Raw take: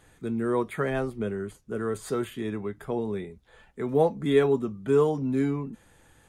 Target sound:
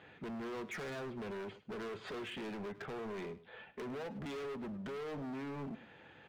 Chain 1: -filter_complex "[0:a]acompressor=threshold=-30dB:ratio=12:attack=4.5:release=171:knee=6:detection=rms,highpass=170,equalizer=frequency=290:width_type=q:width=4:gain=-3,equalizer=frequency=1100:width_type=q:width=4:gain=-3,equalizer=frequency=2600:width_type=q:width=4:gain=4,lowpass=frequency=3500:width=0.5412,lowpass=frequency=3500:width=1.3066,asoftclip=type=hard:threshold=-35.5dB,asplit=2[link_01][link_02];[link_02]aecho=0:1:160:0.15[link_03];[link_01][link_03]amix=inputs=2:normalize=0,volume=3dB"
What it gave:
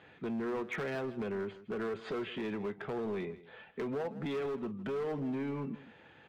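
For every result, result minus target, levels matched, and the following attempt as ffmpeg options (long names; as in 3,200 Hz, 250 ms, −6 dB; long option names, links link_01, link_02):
echo 56 ms late; hard clipping: distortion −7 dB
-filter_complex "[0:a]acompressor=threshold=-30dB:ratio=12:attack=4.5:release=171:knee=6:detection=rms,highpass=170,equalizer=frequency=290:width_type=q:width=4:gain=-3,equalizer=frequency=1100:width_type=q:width=4:gain=-3,equalizer=frequency=2600:width_type=q:width=4:gain=4,lowpass=frequency=3500:width=0.5412,lowpass=frequency=3500:width=1.3066,asoftclip=type=hard:threshold=-35.5dB,asplit=2[link_01][link_02];[link_02]aecho=0:1:104:0.15[link_03];[link_01][link_03]amix=inputs=2:normalize=0,volume=3dB"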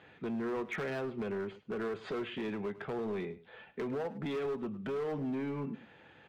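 hard clipping: distortion −7 dB
-filter_complex "[0:a]acompressor=threshold=-30dB:ratio=12:attack=4.5:release=171:knee=6:detection=rms,highpass=170,equalizer=frequency=290:width_type=q:width=4:gain=-3,equalizer=frequency=1100:width_type=q:width=4:gain=-3,equalizer=frequency=2600:width_type=q:width=4:gain=4,lowpass=frequency=3500:width=0.5412,lowpass=frequency=3500:width=1.3066,asoftclip=type=hard:threshold=-44dB,asplit=2[link_01][link_02];[link_02]aecho=0:1:104:0.15[link_03];[link_01][link_03]amix=inputs=2:normalize=0,volume=3dB"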